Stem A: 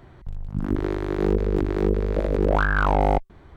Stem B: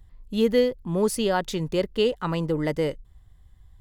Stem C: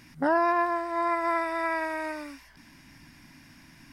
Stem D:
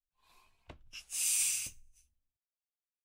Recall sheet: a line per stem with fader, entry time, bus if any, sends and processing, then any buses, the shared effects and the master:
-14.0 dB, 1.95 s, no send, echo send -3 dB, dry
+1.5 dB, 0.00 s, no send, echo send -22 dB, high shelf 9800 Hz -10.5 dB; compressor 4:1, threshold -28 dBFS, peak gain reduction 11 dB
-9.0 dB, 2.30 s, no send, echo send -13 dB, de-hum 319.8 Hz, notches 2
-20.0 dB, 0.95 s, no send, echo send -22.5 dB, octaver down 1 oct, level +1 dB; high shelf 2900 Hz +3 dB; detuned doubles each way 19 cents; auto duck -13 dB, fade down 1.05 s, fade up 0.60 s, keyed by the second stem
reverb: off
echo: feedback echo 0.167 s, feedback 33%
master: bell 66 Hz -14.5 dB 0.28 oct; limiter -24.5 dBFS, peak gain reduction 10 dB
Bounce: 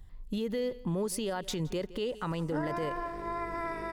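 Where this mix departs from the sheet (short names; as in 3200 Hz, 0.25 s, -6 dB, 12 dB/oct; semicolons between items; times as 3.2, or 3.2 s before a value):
stem A -14.0 dB -> -24.0 dB; stem B: missing high shelf 9800 Hz -10.5 dB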